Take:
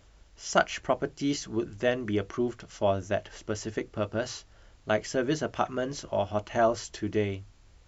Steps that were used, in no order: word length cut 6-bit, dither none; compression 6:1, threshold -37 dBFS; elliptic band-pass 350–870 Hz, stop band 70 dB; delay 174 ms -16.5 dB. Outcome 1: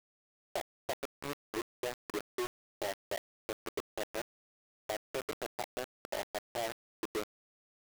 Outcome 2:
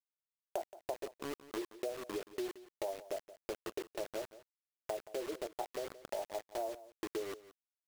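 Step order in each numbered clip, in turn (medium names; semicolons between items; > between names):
elliptic band-pass > compression > delay > word length cut; elliptic band-pass > word length cut > compression > delay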